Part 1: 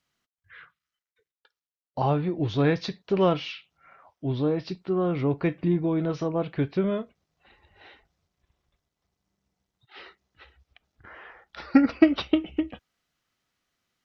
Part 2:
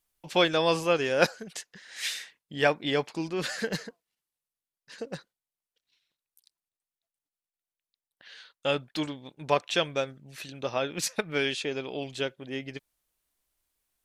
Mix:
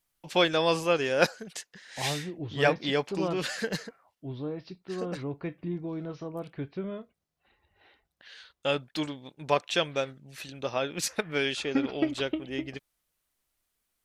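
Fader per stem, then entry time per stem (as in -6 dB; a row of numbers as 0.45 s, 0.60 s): -10.0 dB, -0.5 dB; 0.00 s, 0.00 s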